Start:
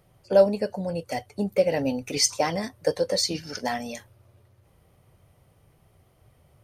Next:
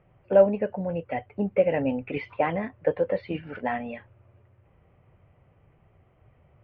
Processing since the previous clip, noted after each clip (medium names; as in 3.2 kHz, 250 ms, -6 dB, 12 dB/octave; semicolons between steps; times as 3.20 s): steep low-pass 2.8 kHz 48 dB/octave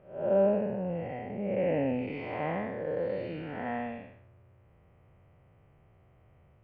spectral blur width 273 ms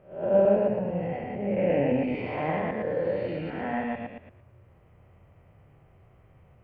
chunks repeated in reverse 113 ms, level 0 dB; trim +1.5 dB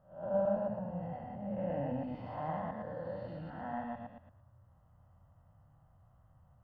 static phaser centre 970 Hz, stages 4; trim -6 dB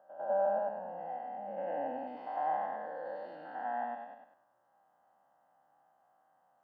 spectrogram pixelated in time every 100 ms; high-pass 300 Hz 24 dB/octave; small resonant body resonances 790/1600 Hz, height 11 dB, ringing for 25 ms